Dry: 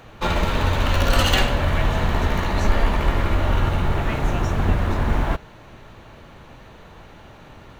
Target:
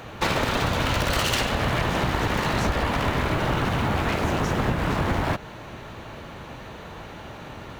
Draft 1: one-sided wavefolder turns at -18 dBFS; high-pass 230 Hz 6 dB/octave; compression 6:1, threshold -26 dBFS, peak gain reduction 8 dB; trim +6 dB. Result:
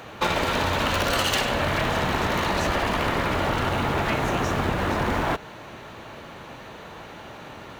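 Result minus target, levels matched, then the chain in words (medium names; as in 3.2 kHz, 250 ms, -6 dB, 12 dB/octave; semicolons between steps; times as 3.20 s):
one-sided wavefolder: distortion -15 dB; 125 Hz band -3.5 dB
one-sided wavefolder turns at -29 dBFS; high-pass 71 Hz 6 dB/octave; compression 6:1, threshold -26 dBFS, peak gain reduction 8.5 dB; trim +6 dB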